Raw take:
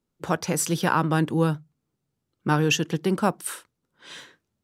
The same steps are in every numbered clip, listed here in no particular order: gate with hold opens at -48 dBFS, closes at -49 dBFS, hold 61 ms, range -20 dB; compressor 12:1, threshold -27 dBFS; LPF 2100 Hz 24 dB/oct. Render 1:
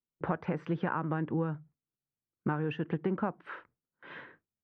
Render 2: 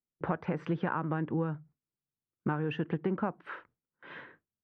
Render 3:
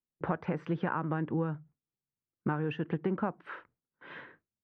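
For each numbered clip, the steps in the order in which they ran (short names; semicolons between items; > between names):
compressor > LPF > gate with hold; LPF > gate with hold > compressor; gate with hold > compressor > LPF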